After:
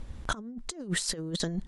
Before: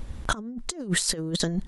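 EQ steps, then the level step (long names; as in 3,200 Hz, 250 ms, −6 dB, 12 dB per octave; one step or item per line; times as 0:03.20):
low-pass filter 10,000 Hz 12 dB per octave
−5.0 dB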